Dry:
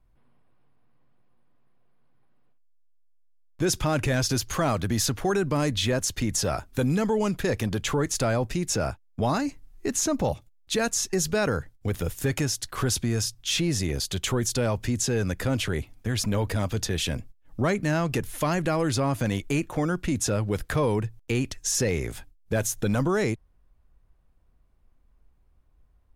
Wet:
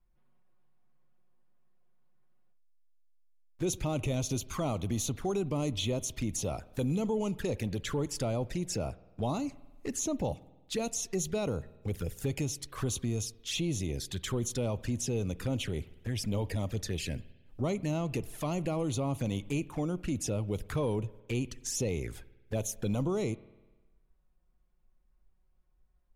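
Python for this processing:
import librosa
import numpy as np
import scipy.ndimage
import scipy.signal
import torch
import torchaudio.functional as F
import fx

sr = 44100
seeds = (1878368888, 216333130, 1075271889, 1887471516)

y = fx.env_flanger(x, sr, rest_ms=5.8, full_db=-22.5)
y = fx.rev_spring(y, sr, rt60_s=1.2, pass_ms=(50,), chirp_ms=40, drr_db=19.0)
y = y * 10.0 ** (-6.0 / 20.0)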